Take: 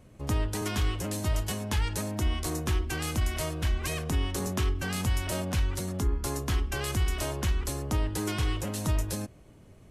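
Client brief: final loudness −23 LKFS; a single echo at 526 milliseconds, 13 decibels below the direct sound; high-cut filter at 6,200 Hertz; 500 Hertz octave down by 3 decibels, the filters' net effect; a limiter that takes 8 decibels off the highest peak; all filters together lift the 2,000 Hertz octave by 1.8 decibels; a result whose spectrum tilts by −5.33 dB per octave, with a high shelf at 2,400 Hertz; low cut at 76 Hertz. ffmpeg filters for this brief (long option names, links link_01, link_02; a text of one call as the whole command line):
ffmpeg -i in.wav -af "highpass=76,lowpass=6200,equalizer=frequency=500:width_type=o:gain=-4,equalizer=frequency=2000:width_type=o:gain=5,highshelf=frequency=2400:gain=-5,alimiter=level_in=1.5dB:limit=-24dB:level=0:latency=1,volume=-1.5dB,aecho=1:1:526:0.224,volume=12.5dB" out.wav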